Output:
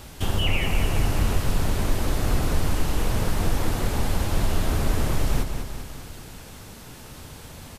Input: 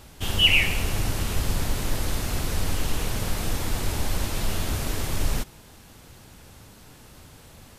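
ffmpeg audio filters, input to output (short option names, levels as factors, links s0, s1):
-filter_complex "[0:a]acrossover=split=1600|3800[s0][s1][s2];[s0]acompressor=threshold=0.0708:ratio=4[s3];[s1]acompressor=threshold=0.00316:ratio=4[s4];[s2]acompressor=threshold=0.00501:ratio=4[s5];[s3][s4][s5]amix=inputs=3:normalize=0,aecho=1:1:200|400|600|800|1000|1200|1400:0.422|0.236|0.132|0.0741|0.0415|0.0232|0.013,volume=1.88"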